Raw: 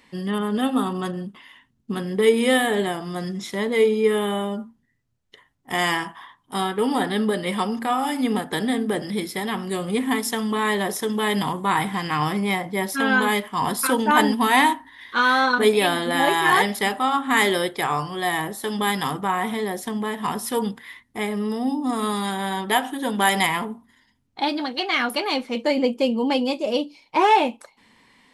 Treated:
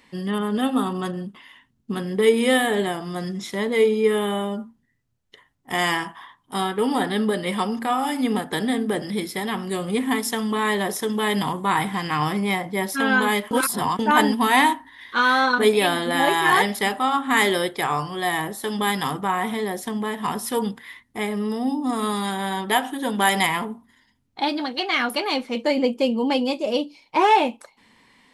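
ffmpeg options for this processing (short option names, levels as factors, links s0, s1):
-filter_complex "[0:a]asplit=3[s0][s1][s2];[s0]atrim=end=13.512[s3];[s1]atrim=start=13.508:end=13.992,asetpts=PTS-STARTPTS,areverse[s4];[s2]atrim=start=13.988[s5];[s3][s4]acrossfade=d=0.004:c1=hsin:c2=hsin[s6];[s6][s5]acrossfade=d=0.004:c1=hsin:c2=hsin"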